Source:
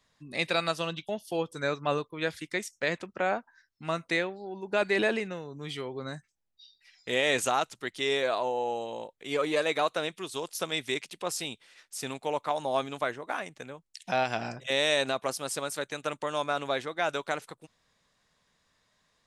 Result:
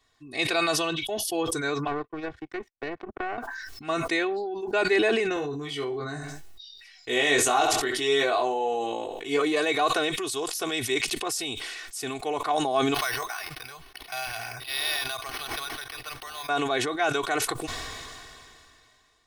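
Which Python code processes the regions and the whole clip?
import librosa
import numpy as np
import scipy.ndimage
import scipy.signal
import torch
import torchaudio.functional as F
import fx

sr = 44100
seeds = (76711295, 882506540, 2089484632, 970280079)

y = fx.chain(x, sr, fx.lowpass(hz=1100.0, slope=12),
    fx.power_curve(exponent=2.0),
    fx.band_squash(depth_pct=100), at=(1.87, 3.38))
y = fx.chain(y, sr, fx.doubler(ms=21.0, db=-4),
    fx.echo_feedback(ms=68, feedback_pct=31, wet_db=-17.5), at=(5.34, 9.4))
y = fx.chain(y, sr, fx.tone_stack(knobs='10-0-10'),
    fx.resample_bad(factor=6, down='none', up='hold'), at=(12.94, 16.49))
y = y + 0.84 * np.pad(y, (int(2.7 * sr / 1000.0), 0))[:len(y)]
y = fx.sustainer(y, sr, db_per_s=23.0)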